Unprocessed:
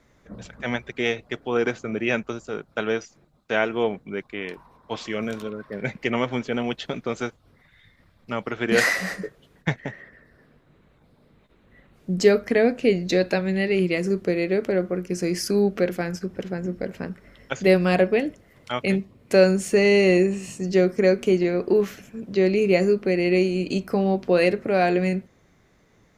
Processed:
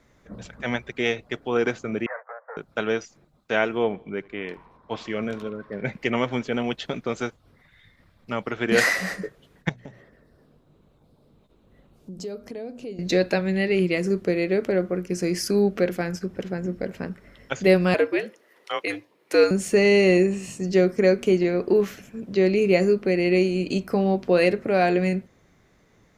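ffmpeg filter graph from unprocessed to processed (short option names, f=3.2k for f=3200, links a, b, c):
-filter_complex "[0:a]asettb=1/sr,asplit=3[a][b][c];[a]atrim=end=2.064[d];[b]atrim=start=2.06:end=2.57,asetpts=PTS-STARTPTS,afade=t=in:d=0.004:c=qsin,afade=t=out:st=0.506:d=0.004:c=qsin,aeval=exprs='(tanh(44.7*val(0)+0.55)-tanh(0.55))/44.7':c=same,asuperpass=centerf=980:order=20:qfactor=0.66,acontrast=38[e];[c]atrim=start=2.566[f];[d][e]acrossfade=d=0.004:c1=hsin:c2=qsin[g];[g][f]acrossfade=d=0.004:c1=qsin:c2=hsin,asettb=1/sr,asplit=3[h][i][j];[h]atrim=end=3.784[k];[i]atrim=start=3.78:end=5.93,asetpts=PTS-STARTPTS,afade=t=in:d=0.004:c=qsin,afade=t=out:st=2.146:d=0.004:c=qsin,lowpass=f=3k:p=1,aecho=1:1:77|154|231:0.0668|0.0354|0.0188,atrim=end_sample=94815[l];[j]atrim=start=5.926[m];[k][l]acrossfade=d=0.004:c1=hsin:c2=qsin[n];[n][m]acrossfade=d=0.004:c1=qsin:c2=hsin,asettb=1/sr,asplit=3[o][p][q];[o]atrim=end=9.694[r];[p]atrim=start=9.69:end=12.99,asetpts=PTS-STARTPTS,afade=t=in:d=0.004:c=qsin,afade=t=out:st=3.296:d=0.004:c=qsin,equalizer=f=1.9k:w=1.5:g=-13,bandreject=f=60:t=h:w=6,bandreject=f=120:t=h:w=6,bandreject=f=180:t=h:w=6,bandreject=f=240:t=h:w=6,acompressor=threshold=-39dB:ratio=2.5:attack=3.2:release=140:knee=1:detection=peak[s];[q]atrim=start=12.986[t];[r][s]acrossfade=d=0.004:c1=hsin:c2=qsin[u];[u][t]acrossfade=d=0.004:c1=qsin:c2=hsin,asettb=1/sr,asplit=3[v][w][x];[v]atrim=end=17.944[y];[w]atrim=start=17.94:end=19.51,asetpts=PTS-STARTPTS,afade=t=in:d=0.004:c=qsin,afade=t=out:st=1.566:d=0.004:c=qsin,highpass=f=450:w=0.5412,highpass=f=450:w=1.3066,equalizer=f=7.5k:w=4.8:g=-5,afreqshift=-87[z];[x]atrim=start=19.506[aa];[y][z]acrossfade=d=0.004:c1=hsin:c2=qsin[ab];[ab][aa]acrossfade=d=0.004:c1=qsin:c2=hsin"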